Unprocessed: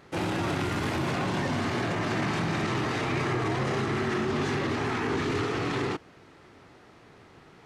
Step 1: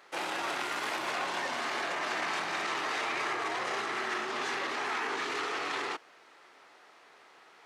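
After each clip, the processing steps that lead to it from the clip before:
high-pass filter 680 Hz 12 dB per octave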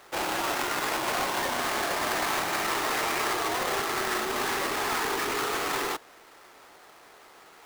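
each half-wave held at its own peak
level +1 dB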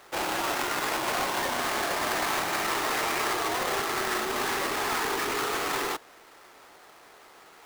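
no processing that can be heard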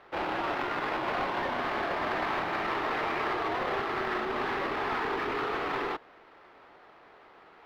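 high-frequency loss of the air 350 metres

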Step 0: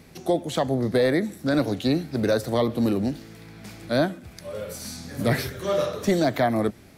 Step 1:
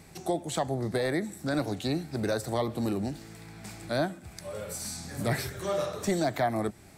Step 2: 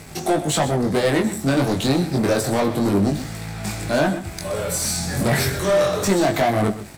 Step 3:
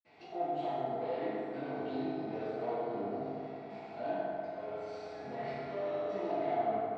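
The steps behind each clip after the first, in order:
thirty-one-band graphic EQ 250 Hz −6 dB, 500 Hz −5 dB, 800 Hz +4 dB, 3,150 Hz −3 dB, 8,000 Hz +9 dB; in parallel at −1.5 dB: downward compressor, threshold −32 dBFS, peak gain reduction 14.5 dB; on the sum: level −7 dB
leveller curve on the samples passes 3; chorus effect 0.29 Hz, delay 19.5 ms, depth 3.1 ms; single-tap delay 126 ms −13.5 dB; level +6.5 dB
loudspeaker in its box 220–3,400 Hz, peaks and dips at 240 Hz −5 dB, 670 Hz +9 dB, 1,600 Hz −7 dB; convolution reverb RT60 3.0 s, pre-delay 47 ms; one half of a high-frequency compander encoder only; level −6 dB

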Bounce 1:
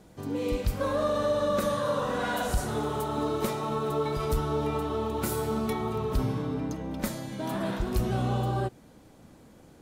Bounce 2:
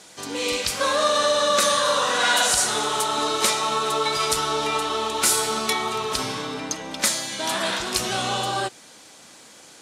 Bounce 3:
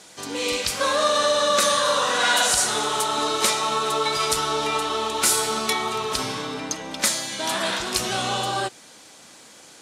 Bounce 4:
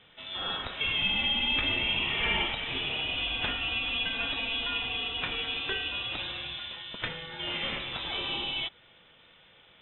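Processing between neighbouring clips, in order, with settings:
meter weighting curve ITU-R 468; level +9 dB
no processing that can be heard
voice inversion scrambler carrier 3,800 Hz; level −7.5 dB

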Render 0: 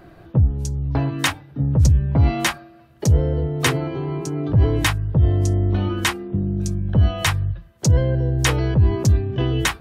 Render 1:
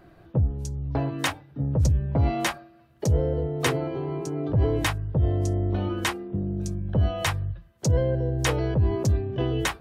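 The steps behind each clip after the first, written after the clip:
dynamic equaliser 550 Hz, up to +7 dB, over −37 dBFS, Q 1
level −7 dB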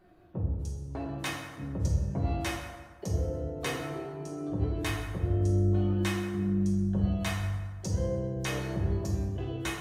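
tuned comb filter 360 Hz, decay 0.21 s, harmonics all, mix 80%
convolution reverb RT60 1.5 s, pre-delay 5 ms, DRR −1.5 dB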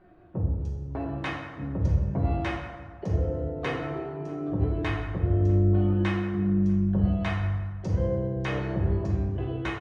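low-pass filter 2,400 Hz 12 dB per octave
slap from a distant wall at 110 metres, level −22 dB
level +4 dB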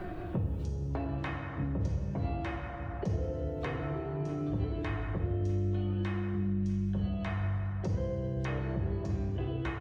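multiband upward and downward compressor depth 100%
level −7.5 dB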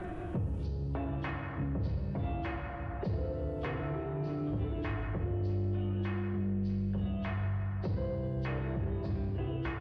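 hearing-aid frequency compression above 2,700 Hz 1.5 to 1
harmonic generator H 5 −22 dB, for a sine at −20.5 dBFS
level −2.5 dB

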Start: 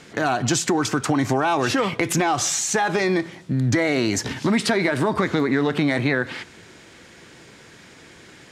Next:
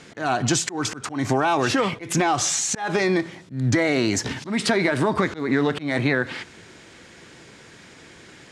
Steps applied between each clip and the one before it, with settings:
low-pass filter 11,000 Hz 24 dB per octave
volume swells 174 ms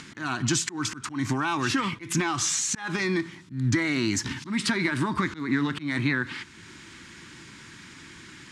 flat-topped bell 570 Hz −15 dB 1.1 octaves
upward compression, threshold −36 dBFS
level −3 dB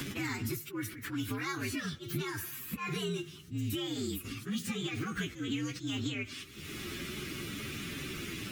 partials spread apart or drawn together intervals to 121%
multiband upward and downward compressor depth 100%
level −7 dB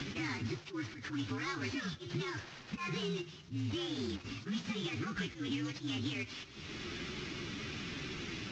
variable-slope delta modulation 32 kbit/s
level −2 dB

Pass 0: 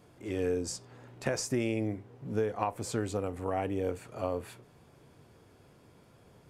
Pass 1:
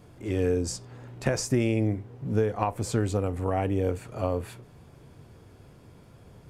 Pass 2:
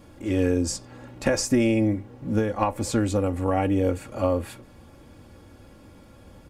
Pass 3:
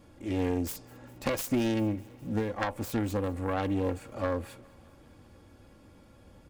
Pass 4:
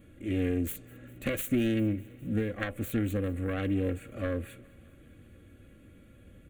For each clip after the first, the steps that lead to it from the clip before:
low-shelf EQ 140 Hz +10.5 dB; level +3.5 dB
comb filter 3.6 ms, depth 62%; level +3 dB
phase distortion by the signal itself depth 0.37 ms; feedback echo with a high-pass in the loop 203 ms, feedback 75%, high-pass 420 Hz, level −24 dB; level −6.5 dB
in parallel at −11 dB: gain into a clipping stage and back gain 25 dB; on the sum: phaser with its sweep stopped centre 2,200 Hz, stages 4

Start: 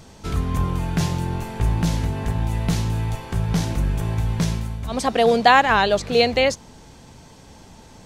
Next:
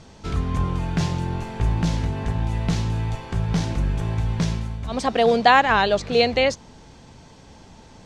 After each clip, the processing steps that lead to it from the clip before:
low-pass filter 6,600 Hz 12 dB per octave
level −1 dB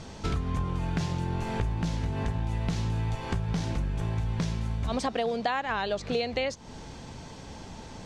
downward compressor 12 to 1, threshold −29 dBFS, peak gain reduction 19 dB
level +3.5 dB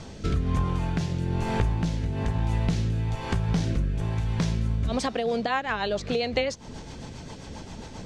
rotating-speaker cabinet horn 1.1 Hz, later 7.5 Hz, at 0:04.83
level +5 dB

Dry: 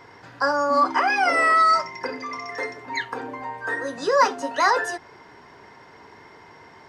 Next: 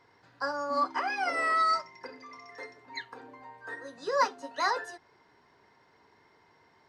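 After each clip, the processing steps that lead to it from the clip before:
parametric band 4,100 Hz +6 dB 0.29 octaves
expander for the loud parts 1.5 to 1, over −30 dBFS
level −7.5 dB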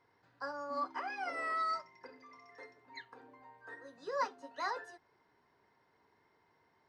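high-shelf EQ 4,000 Hz −6 dB
level −8.5 dB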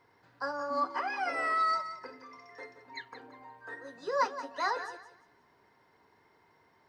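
feedback echo with a high-pass in the loop 175 ms, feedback 26%, level −11.5 dB
level +6 dB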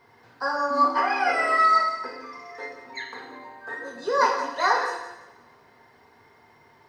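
coupled-rooms reverb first 0.75 s, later 2.6 s, from −26 dB, DRR −1 dB
level +6.5 dB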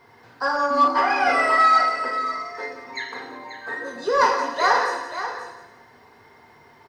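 in parallel at −4 dB: soft clipping −20 dBFS, distortion −11 dB
on the sum: single-tap delay 535 ms −10.5 dB

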